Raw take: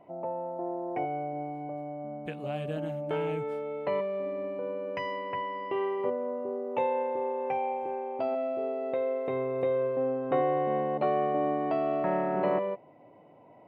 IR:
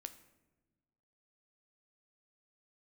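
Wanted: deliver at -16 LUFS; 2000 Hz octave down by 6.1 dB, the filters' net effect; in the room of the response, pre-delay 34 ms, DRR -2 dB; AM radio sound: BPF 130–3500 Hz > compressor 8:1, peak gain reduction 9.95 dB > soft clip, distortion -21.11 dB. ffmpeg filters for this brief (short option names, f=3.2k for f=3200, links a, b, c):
-filter_complex "[0:a]equalizer=f=2k:t=o:g=-6.5,asplit=2[a][b];[1:a]atrim=start_sample=2205,adelay=34[c];[b][c]afir=irnorm=-1:irlink=0,volume=6.5dB[d];[a][d]amix=inputs=2:normalize=0,highpass=130,lowpass=3.5k,acompressor=threshold=-28dB:ratio=8,asoftclip=threshold=-25dB,volume=17.5dB"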